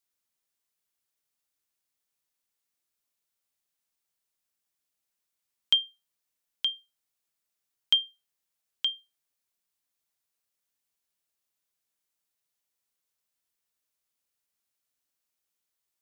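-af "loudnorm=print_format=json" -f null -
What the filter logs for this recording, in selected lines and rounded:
"input_i" : "-27.3",
"input_tp" : "-11.8",
"input_lra" : "3.5",
"input_thresh" : "-39.1",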